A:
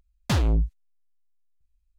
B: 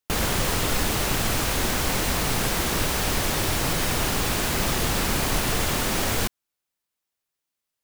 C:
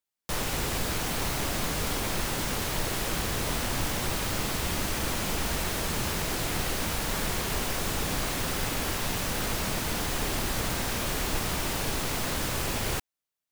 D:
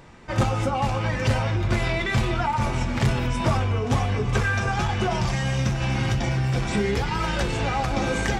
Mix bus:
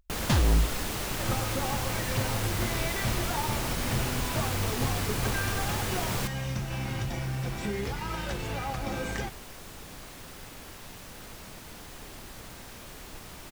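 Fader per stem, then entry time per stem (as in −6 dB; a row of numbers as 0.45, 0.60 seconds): −1.0, −8.5, −15.0, −9.0 decibels; 0.00, 0.00, 1.80, 0.90 seconds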